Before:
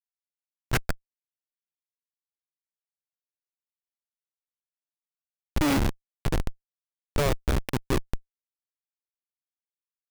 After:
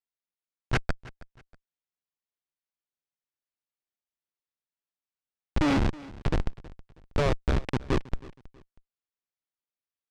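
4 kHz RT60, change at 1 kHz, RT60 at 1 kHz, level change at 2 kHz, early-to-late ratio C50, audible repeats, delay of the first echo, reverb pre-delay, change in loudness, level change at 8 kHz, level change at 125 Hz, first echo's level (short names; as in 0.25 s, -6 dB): none, -0.5 dB, none, -1.0 dB, none, 2, 0.32 s, none, -1.0 dB, -9.5 dB, 0.0 dB, -20.0 dB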